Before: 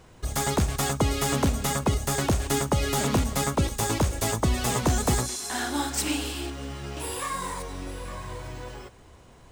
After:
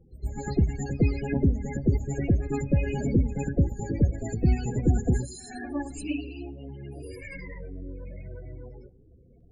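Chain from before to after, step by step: minimum comb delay 0.44 ms; loudest bins only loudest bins 16; pre-echo 0.109 s -13 dB; on a send at -20.5 dB: reverb RT60 1.1 s, pre-delay 3 ms; on the sum: upward expander 1.5:1, over -33 dBFS; gain +4 dB

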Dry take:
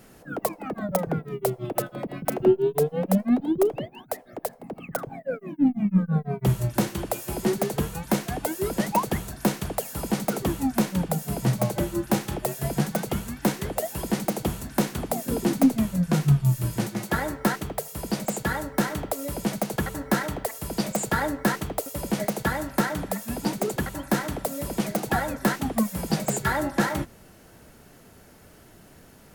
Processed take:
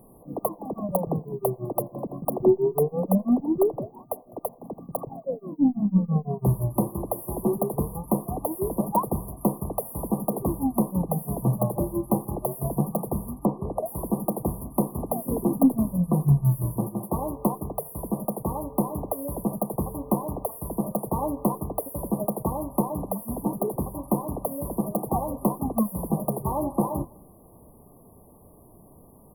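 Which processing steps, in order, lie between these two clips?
13.34–13.86 treble ducked by the level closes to 2000 Hz, closed at -19 dBFS; outdoor echo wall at 35 m, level -25 dB; FFT band-reject 1200–9500 Hz

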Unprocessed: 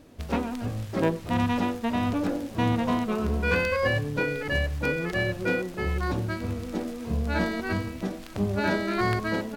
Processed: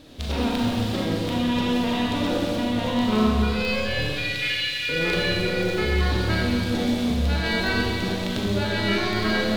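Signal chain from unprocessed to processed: tracing distortion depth 0.11 ms; bell 3700 Hz +12.5 dB 0.87 oct; negative-ratio compressor -28 dBFS, ratio -1; 4.09–4.89 resonant high-pass 2500 Hz, resonance Q 2.1; Schroeder reverb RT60 2.3 s, combs from 29 ms, DRR -3.5 dB

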